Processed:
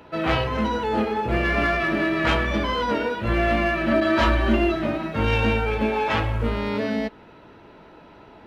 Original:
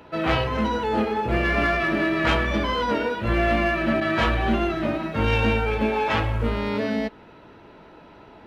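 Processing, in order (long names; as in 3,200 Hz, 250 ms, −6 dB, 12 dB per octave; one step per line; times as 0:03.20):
0:03.91–0:04.76: comb filter 3.3 ms, depth 80%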